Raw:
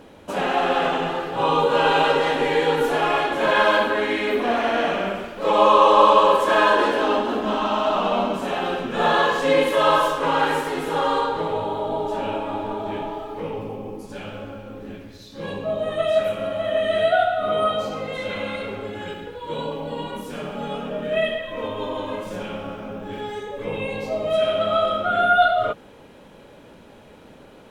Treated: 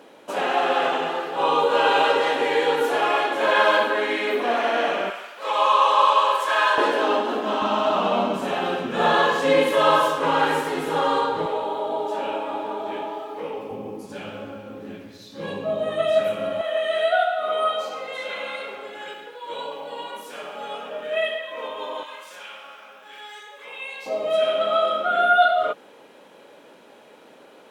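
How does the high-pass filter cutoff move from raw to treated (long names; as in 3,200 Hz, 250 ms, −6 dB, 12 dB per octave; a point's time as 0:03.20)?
330 Hz
from 0:05.10 900 Hz
from 0:06.78 290 Hz
from 0:07.62 110 Hz
from 0:11.46 340 Hz
from 0:13.71 140 Hz
from 0:16.61 590 Hz
from 0:22.03 1,300 Hz
from 0:24.06 350 Hz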